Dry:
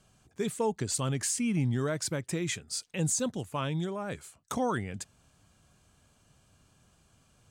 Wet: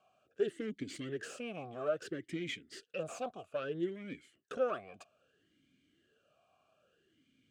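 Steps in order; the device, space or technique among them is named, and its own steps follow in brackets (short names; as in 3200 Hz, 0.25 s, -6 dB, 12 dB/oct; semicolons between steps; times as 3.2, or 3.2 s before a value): talk box (tube stage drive 29 dB, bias 0.7; vowel sweep a-i 0.61 Hz); gain +11.5 dB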